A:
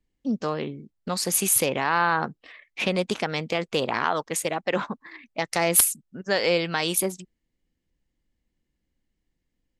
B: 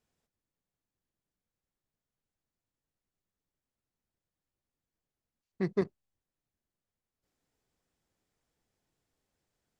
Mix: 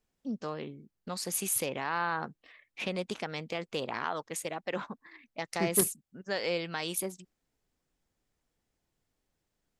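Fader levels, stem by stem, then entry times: -9.5 dB, -0.5 dB; 0.00 s, 0.00 s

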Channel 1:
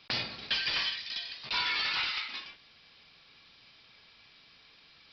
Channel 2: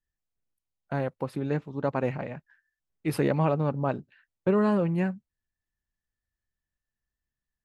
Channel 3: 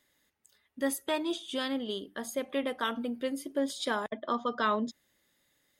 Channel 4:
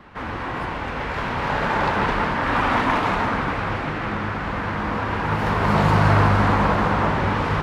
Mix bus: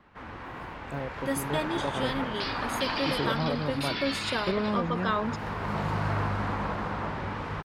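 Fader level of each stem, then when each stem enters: -3.5 dB, -6.0 dB, 0.0 dB, -12.5 dB; 2.30 s, 0.00 s, 0.45 s, 0.00 s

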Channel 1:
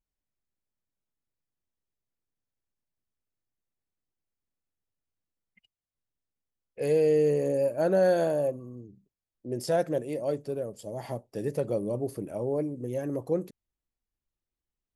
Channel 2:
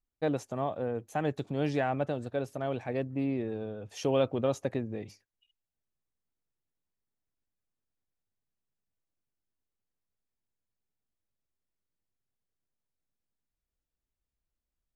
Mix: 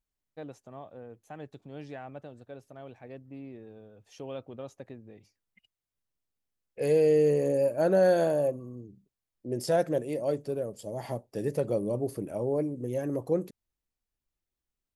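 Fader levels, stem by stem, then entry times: +0.5 dB, -12.5 dB; 0.00 s, 0.15 s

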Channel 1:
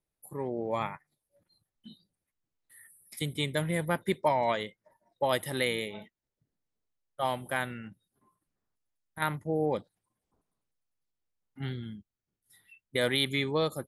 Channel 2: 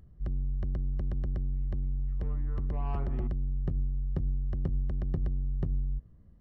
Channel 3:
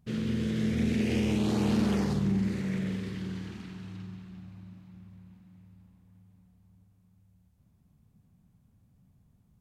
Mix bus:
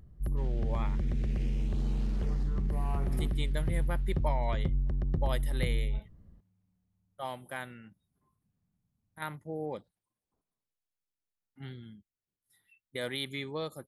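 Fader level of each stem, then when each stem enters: -8.0 dB, +0.5 dB, -15.5 dB; 0.00 s, 0.00 s, 0.30 s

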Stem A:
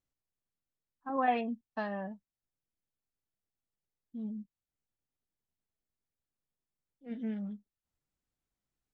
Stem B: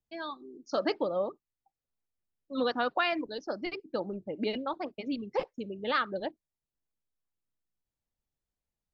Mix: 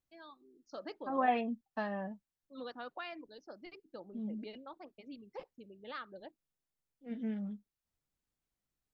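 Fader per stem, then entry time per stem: -1.0 dB, -15.5 dB; 0.00 s, 0.00 s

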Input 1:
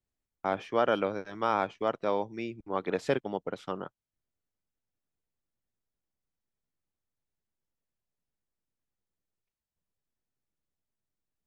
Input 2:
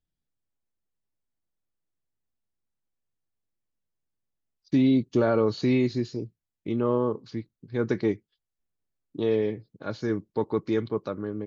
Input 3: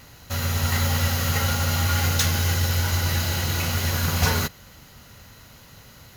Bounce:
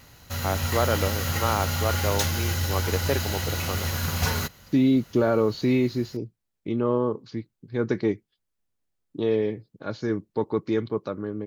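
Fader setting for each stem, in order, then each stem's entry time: +1.5 dB, +1.0 dB, -4.0 dB; 0.00 s, 0.00 s, 0.00 s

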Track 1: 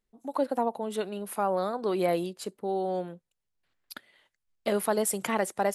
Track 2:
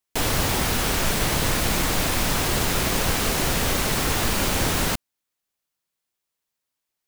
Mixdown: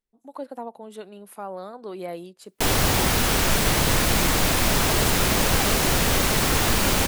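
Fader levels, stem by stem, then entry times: -7.0 dB, +2.0 dB; 0.00 s, 2.45 s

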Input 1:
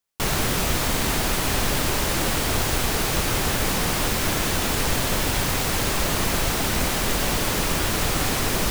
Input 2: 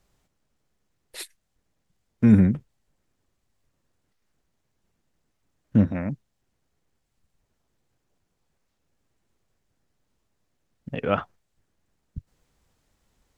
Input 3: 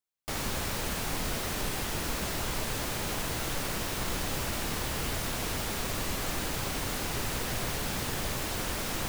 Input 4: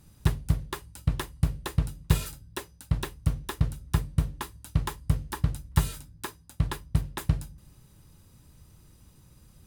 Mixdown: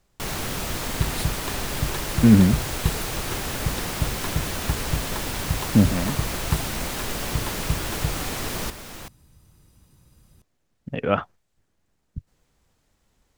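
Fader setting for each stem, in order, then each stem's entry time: -6.5 dB, +2.0 dB, -6.0 dB, -1.0 dB; 0.00 s, 0.00 s, 0.00 s, 0.75 s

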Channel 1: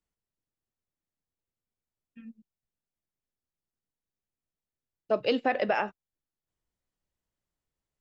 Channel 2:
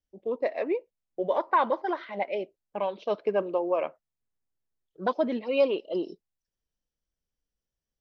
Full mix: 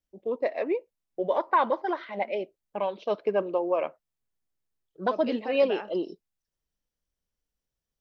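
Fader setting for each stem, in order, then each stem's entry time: -10.0 dB, +0.5 dB; 0.00 s, 0.00 s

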